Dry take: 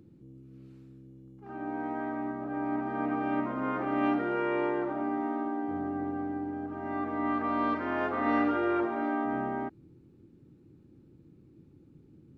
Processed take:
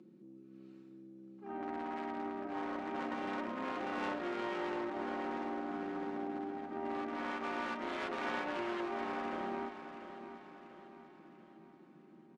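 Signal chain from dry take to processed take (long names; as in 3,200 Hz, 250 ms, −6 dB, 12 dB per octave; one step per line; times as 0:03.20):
wavefolder on the positive side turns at −30 dBFS
Chebyshev high-pass filter 220 Hz, order 3
comb filter 5.4 ms, depth 56%
downward compressor 3 to 1, threshold −39 dBFS, peak gain reduction 10 dB
soft clipping −27 dBFS, distortion −30 dB
harmonic generator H 3 −13 dB, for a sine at −27 dBFS
high-frequency loss of the air 66 metres
on a send: repeating echo 691 ms, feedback 48%, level −10.5 dB
on the sum: level +8.5 dB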